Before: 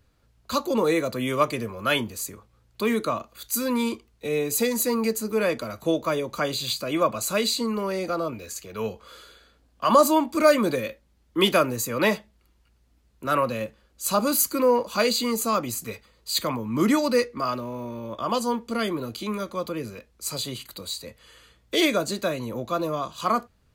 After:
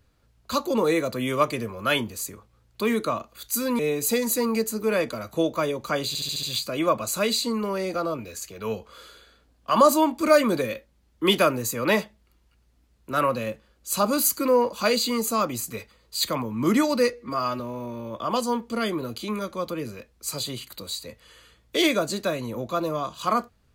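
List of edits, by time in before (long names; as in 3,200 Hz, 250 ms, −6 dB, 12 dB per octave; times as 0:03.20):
0:03.79–0:04.28: remove
0:06.57: stutter 0.07 s, 6 plays
0:17.27–0:17.58: time-stretch 1.5×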